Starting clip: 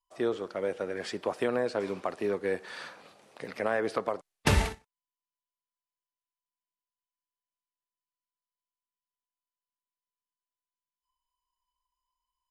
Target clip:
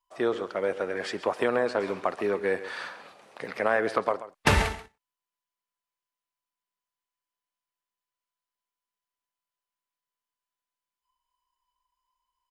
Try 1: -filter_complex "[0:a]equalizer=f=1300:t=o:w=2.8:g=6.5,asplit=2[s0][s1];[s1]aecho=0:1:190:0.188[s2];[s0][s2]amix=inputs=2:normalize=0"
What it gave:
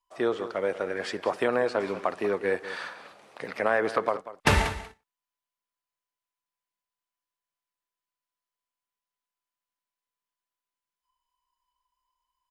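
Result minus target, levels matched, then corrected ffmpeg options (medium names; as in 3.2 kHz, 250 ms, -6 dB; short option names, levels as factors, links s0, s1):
echo 56 ms late
-filter_complex "[0:a]equalizer=f=1300:t=o:w=2.8:g=6.5,asplit=2[s0][s1];[s1]aecho=0:1:134:0.188[s2];[s0][s2]amix=inputs=2:normalize=0"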